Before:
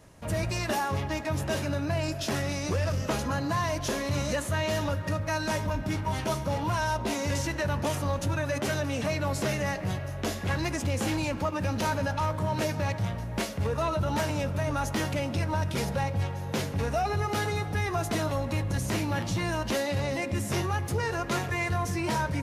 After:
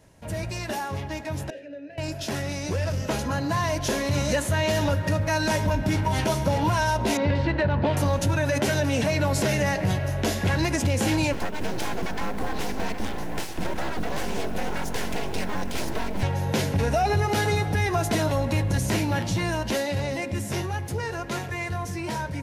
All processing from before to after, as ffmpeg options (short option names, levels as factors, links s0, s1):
-filter_complex "[0:a]asettb=1/sr,asplit=3[s0][s1][s2];[s0]atrim=end=1.504[s3];[s1]atrim=start=1.5:end=1.98,asetpts=PTS-STARTPTS,afade=t=in:d=0.004:c=qsin,afade=t=out:st=0.476:d=0.004:c=qsin,asplit=3[s4][s5][s6];[s4]bandpass=f=530:t=q:w=8,volume=1[s7];[s5]bandpass=f=1840:t=q:w=8,volume=0.501[s8];[s6]bandpass=f=2480:t=q:w=8,volume=0.355[s9];[s7][s8][s9]amix=inputs=3:normalize=0,equalizer=f=280:t=o:w=0.21:g=14.5[s10];[s2]atrim=start=1.976[s11];[s3][s10]acrossfade=d=0.004:c1=hsin:c2=qsin[s12];[s12][s11]acrossfade=d=0.004:c1=qsin:c2=hsin,asettb=1/sr,asplit=3[s13][s14][s15];[s13]atrim=end=7.174[s16];[s14]atrim=start=7.17:end=7.97,asetpts=PTS-STARTPTS,afade=t=in:d=0.004:c=qsin,afade=t=out:st=0.796:d=0.004:c=qsin,highshelf=f=5200:t=q:w=3:g=-6,adynamicsmooth=sensitivity=0.5:basefreq=2200[s17];[s15]atrim=start=7.966[s18];[s16][s17]acrossfade=d=0.004:c1=hsin:c2=qsin[s19];[s19][s18]acrossfade=d=0.004:c1=qsin:c2=hsin,asettb=1/sr,asplit=3[s20][s21][s22];[s20]atrim=end=11.334[s23];[s21]atrim=start=11.33:end=16.23,asetpts=PTS-STARTPTS,afade=t=in:d=0.004:c=qsin,afade=t=out:st=4.896:d=0.004:c=qsin,acrossover=split=150|360[s24][s25][s26];[s24]acompressor=threshold=0.0158:ratio=4[s27];[s25]acompressor=threshold=0.00891:ratio=4[s28];[s26]acompressor=threshold=0.0141:ratio=4[s29];[s27][s28][s29]amix=inputs=3:normalize=0,aeval=exprs='abs(val(0))':c=same,acrusher=bits=8:mode=log:mix=0:aa=0.000001[s30];[s22]atrim=start=16.226[s31];[s23][s30]acrossfade=d=0.004:c1=hsin:c2=qsin[s32];[s32][s31]acrossfade=d=0.004:c1=qsin:c2=hsin,bandreject=f=1200:w=6.6,dynaudnorm=f=480:g=17:m=3.16,alimiter=limit=0.224:level=0:latency=1:release=122,volume=0.841"